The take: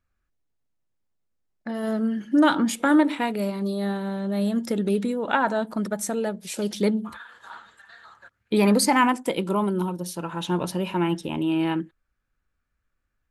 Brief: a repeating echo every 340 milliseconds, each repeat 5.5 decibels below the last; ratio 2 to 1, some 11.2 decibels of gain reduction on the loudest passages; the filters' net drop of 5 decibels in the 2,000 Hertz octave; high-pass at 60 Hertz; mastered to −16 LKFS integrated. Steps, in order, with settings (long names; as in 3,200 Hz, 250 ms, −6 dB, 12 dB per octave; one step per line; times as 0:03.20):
high-pass filter 60 Hz
parametric band 2,000 Hz −7 dB
downward compressor 2 to 1, threshold −36 dBFS
repeating echo 340 ms, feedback 53%, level −5.5 dB
level +16.5 dB